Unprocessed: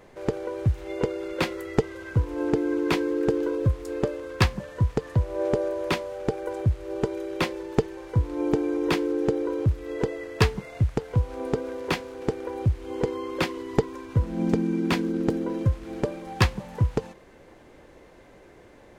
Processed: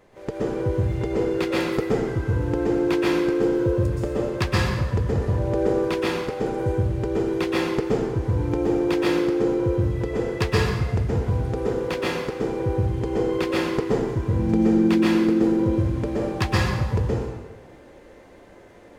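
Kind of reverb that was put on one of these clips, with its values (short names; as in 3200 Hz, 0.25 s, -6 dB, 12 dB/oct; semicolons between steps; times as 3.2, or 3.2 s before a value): plate-style reverb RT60 1.2 s, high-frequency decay 0.75×, pre-delay 0.11 s, DRR -6.5 dB; gain -4.5 dB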